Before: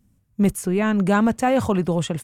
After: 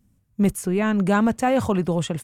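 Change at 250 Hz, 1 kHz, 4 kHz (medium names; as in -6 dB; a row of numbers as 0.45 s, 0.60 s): -1.0 dB, -1.0 dB, -1.0 dB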